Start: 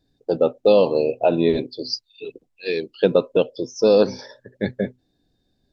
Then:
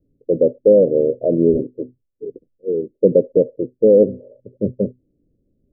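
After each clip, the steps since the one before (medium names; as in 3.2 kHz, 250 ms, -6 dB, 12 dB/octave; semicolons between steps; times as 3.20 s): steep low-pass 590 Hz 72 dB/octave; trim +4 dB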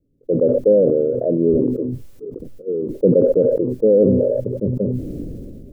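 decay stretcher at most 24 dB/s; trim -2.5 dB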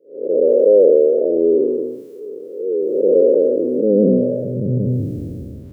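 spectral blur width 248 ms; gain riding within 4 dB 2 s; high-pass sweep 420 Hz -> 82 Hz, 3.14–5.35 s; trim -1 dB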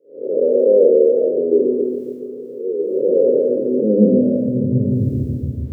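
feedback echo behind a low-pass 140 ms, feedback 68%, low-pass 470 Hz, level -8.5 dB; on a send at -9 dB: reverberation RT60 0.40 s, pre-delay 3 ms; on the sum: trim -3 dB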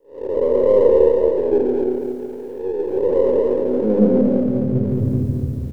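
partial rectifier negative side -3 dB; delay 221 ms -6 dB; tape noise reduction on one side only encoder only; trim -1 dB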